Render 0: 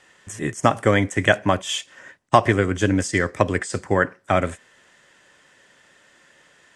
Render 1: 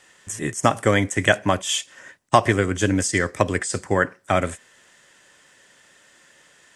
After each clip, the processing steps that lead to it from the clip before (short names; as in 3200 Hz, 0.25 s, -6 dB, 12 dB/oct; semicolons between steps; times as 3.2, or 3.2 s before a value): high shelf 5400 Hz +9.5 dB; gain -1 dB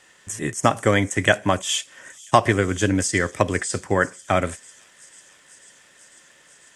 thin delay 0.495 s, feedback 80%, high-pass 5500 Hz, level -16.5 dB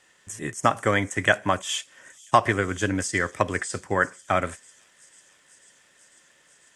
dynamic EQ 1300 Hz, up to +6 dB, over -34 dBFS, Q 0.82; gain -6 dB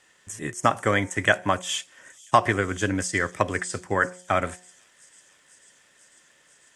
de-hum 180.8 Hz, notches 5